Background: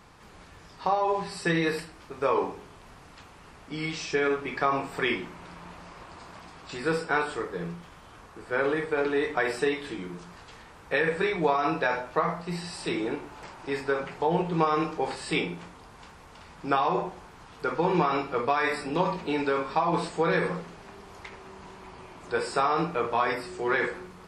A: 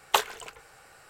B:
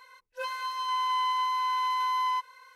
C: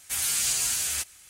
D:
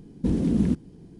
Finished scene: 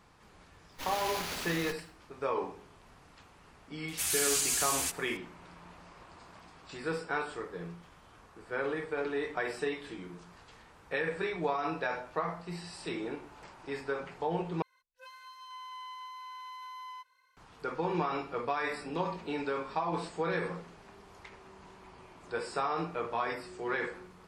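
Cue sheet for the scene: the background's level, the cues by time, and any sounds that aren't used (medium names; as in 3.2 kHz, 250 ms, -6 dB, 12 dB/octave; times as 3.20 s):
background -7.5 dB
0.69 s: add C -8.5 dB, fades 0.10 s + sliding maximum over 5 samples
3.88 s: add C -4 dB
14.62 s: replace with B -14.5 dB + peaking EQ 530 Hz -5.5 dB 1.9 oct
not used: A, D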